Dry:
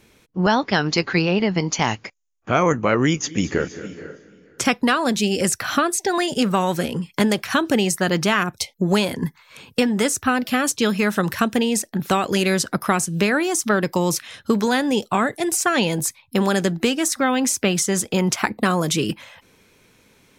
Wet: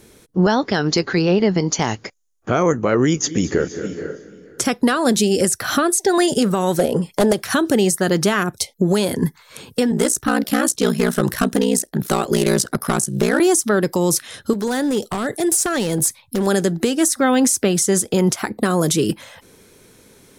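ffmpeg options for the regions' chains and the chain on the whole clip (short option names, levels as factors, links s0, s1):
-filter_complex "[0:a]asettb=1/sr,asplit=3[s0][s1][s2];[s0]atrim=end=6.794[s3];[s1]atrim=start=6.79:end=7.33,asetpts=PTS-STARTPTS,afade=t=in:d=0.004:c=qsin,afade=t=out:st=0.536:d=0.004:c=qsin,equalizer=f=640:t=o:w=1.1:g=13,aeval=exprs='0.447*(abs(mod(val(0)/0.447+3,4)-2)-1)':c=same[s4];[s2]atrim=start=7.326[s5];[s3][s4]acrossfade=d=0.004:c1=hsin:c2=qsin[s6];[s6][s5]acrossfade=d=0.004:c1=qsin:c2=hsin,asettb=1/sr,asplit=3[s7][s8][s9];[s7]atrim=end=9.914[s10];[s8]atrim=start=9.91:end=13.4,asetpts=PTS-STARTPTS,afade=t=in:d=0.004:c=qsin,afade=t=out:st=3.486:d=0.004:c=qsin,asoftclip=type=hard:threshold=0.2,aeval=exprs='val(0)*sin(2*PI*30*n/s)':c=same[s11];[s9]atrim=start=13.396[s12];[s10][s11]acrossfade=d=0.004:c1=hsin:c2=qsin[s13];[s13][s12]acrossfade=d=0.004:c1=qsin:c2=hsin,asettb=1/sr,asplit=3[s14][s15][s16];[s14]atrim=end=14.534[s17];[s15]atrim=start=14.53:end=16.47,asetpts=PTS-STARTPTS,afade=t=in:d=0.004:c=qsin,afade=t=out:st=1.936:d=0.004:c=qsin,acompressor=threshold=0.0708:ratio=4:attack=3.2:release=140:knee=1:detection=peak,aeval=exprs='0.0944*(abs(mod(val(0)/0.0944+3,4)-2)-1)':c=same[s18];[s16]atrim=start=16.466[s19];[s17][s18]acrossfade=d=0.004:c1=hsin:c2=qsin[s20];[s20][s19]acrossfade=d=0.004:c1=qsin:c2=hsin,equalizer=f=400:t=o:w=0.67:g=4,equalizer=f=1000:t=o:w=0.67:g=-3,equalizer=f=2500:t=o:w=0.67:g=-7,equalizer=f=10000:t=o:w=0.67:g=7,alimiter=limit=0.224:level=0:latency=1:release=263,volume=2"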